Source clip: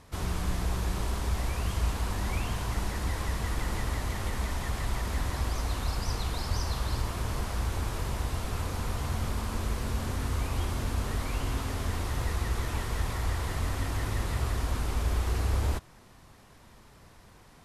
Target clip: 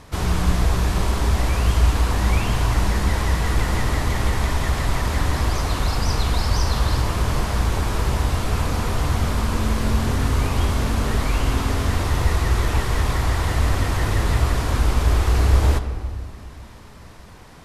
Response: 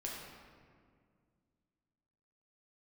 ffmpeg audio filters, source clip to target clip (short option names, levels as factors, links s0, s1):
-filter_complex "[0:a]asplit=2[s0][s1];[1:a]atrim=start_sample=2205,lowpass=8500[s2];[s1][s2]afir=irnorm=-1:irlink=0,volume=0.596[s3];[s0][s3]amix=inputs=2:normalize=0,volume=2.37"